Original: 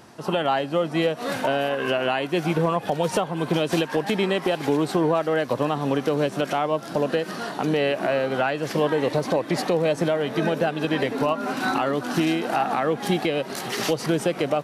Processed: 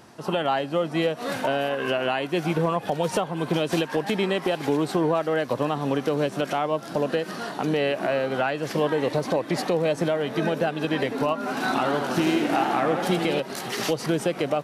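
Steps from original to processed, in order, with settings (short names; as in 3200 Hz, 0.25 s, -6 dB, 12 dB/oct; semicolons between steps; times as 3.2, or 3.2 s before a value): 11.39–13.4 warbling echo 83 ms, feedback 77%, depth 169 cents, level -7 dB; gain -1.5 dB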